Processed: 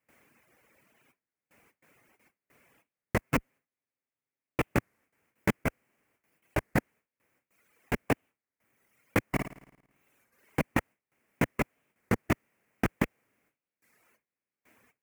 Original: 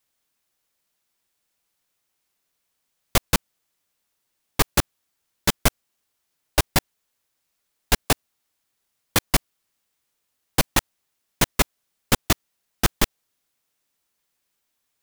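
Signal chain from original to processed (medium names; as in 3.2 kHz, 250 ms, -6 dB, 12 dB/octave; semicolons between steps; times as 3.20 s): 3.21–4.60 s: comb filter that takes the minimum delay 7.5 ms; in parallel at -7 dB: saturation -15 dBFS, distortion -11 dB; on the sum: compressor with a negative ratio -27 dBFS, ratio -1; graphic EQ 125/250/500 Hz +6/+8/+6 dB; gate with hold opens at -48 dBFS; high-pass 42 Hz; resonant high shelf 2.9 kHz -9 dB, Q 3; 9.25–10.62 s: flutter echo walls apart 9.4 m, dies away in 0.96 s; reverb removal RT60 1.7 s; warped record 33 1/3 rpm, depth 160 cents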